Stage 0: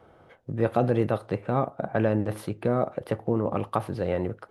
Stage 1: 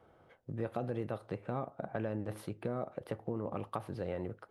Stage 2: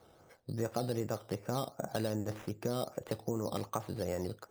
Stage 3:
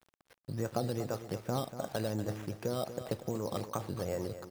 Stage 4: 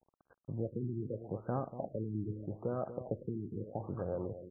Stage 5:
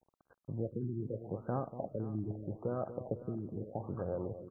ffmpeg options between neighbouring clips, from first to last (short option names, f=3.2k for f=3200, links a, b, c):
-af "acompressor=threshold=-25dB:ratio=3,volume=-8.5dB"
-af "acrusher=samples=8:mix=1:aa=0.000001:lfo=1:lforange=4.8:lforate=2.6,volume=2dB"
-af "aphaser=in_gain=1:out_gain=1:delay=2.3:decay=0.21:speed=1.3:type=triangular,aeval=exprs='val(0)*gte(abs(val(0)),0.00237)':c=same,aecho=1:1:239|478|717:0.266|0.0825|0.0256"
-af "afftfilt=real='re*lt(b*sr/1024,400*pow(1700/400,0.5+0.5*sin(2*PI*0.8*pts/sr)))':imag='im*lt(b*sr/1024,400*pow(1700/400,0.5+0.5*sin(2*PI*0.8*pts/sr)))':win_size=1024:overlap=0.75,volume=-1.5dB"
-af "aecho=1:1:509:0.15"